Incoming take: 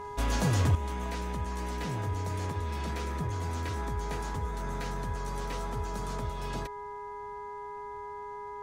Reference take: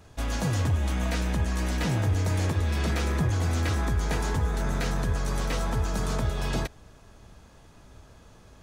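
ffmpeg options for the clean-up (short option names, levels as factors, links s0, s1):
-af "bandreject=f=413.6:t=h:w=4,bandreject=f=827.2:t=h:w=4,bandreject=f=1240.8:t=h:w=4,bandreject=f=1654.4:t=h:w=4,bandreject=f=2068:t=h:w=4,bandreject=f=980:w=30,asetnsamples=n=441:p=0,asendcmd='0.75 volume volume 8.5dB',volume=1"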